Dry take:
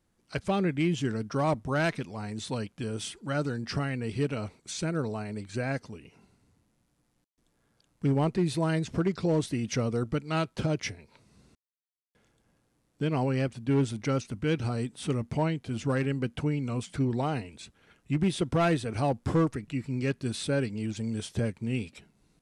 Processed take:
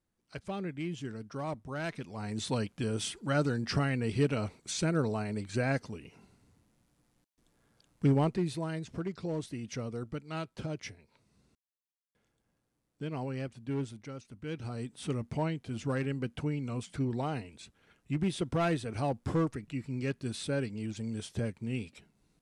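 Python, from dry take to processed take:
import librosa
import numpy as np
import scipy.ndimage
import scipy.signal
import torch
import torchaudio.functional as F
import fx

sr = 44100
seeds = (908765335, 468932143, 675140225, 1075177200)

y = fx.gain(x, sr, db=fx.line((1.8, -10.0), (2.38, 1.0), (8.06, 1.0), (8.7, -9.0), (13.81, -9.0), (14.14, -16.0), (14.99, -4.5)))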